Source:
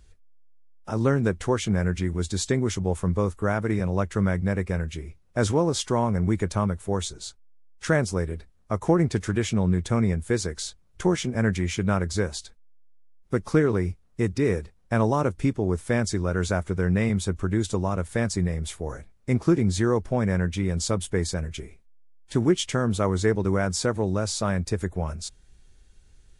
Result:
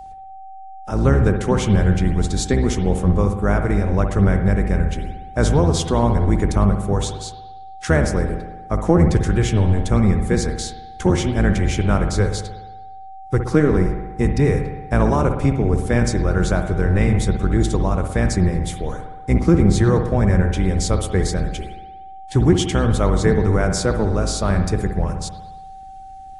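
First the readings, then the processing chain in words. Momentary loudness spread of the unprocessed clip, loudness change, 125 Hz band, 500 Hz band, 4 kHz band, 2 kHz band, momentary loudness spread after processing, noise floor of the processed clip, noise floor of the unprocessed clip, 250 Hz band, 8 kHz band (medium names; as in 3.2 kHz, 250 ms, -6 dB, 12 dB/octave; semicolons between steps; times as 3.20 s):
9 LU, +6.5 dB, +8.0 dB, +5.0 dB, +4.0 dB, +4.5 dB, 16 LU, -37 dBFS, -57 dBFS, +6.0 dB, +3.5 dB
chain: octave divider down 1 oct, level +2 dB; whistle 770 Hz -38 dBFS; spring tank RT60 1.1 s, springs 59 ms, chirp 55 ms, DRR 6 dB; trim +3.5 dB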